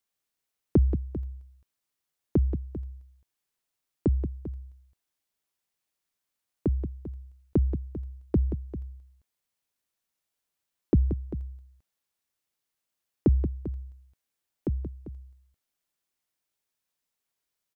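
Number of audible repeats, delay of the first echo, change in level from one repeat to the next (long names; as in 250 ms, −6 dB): 2, 179 ms, repeats not evenly spaced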